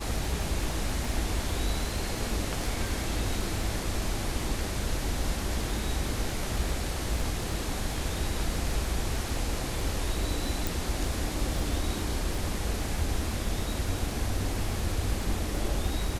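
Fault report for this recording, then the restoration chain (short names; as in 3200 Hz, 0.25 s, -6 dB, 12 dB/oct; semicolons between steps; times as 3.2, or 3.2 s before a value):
crackle 24/s -33 dBFS
10.67 pop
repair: de-click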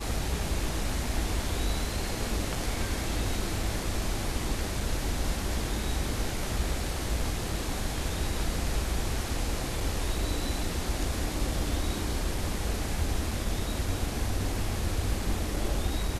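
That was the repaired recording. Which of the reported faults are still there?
none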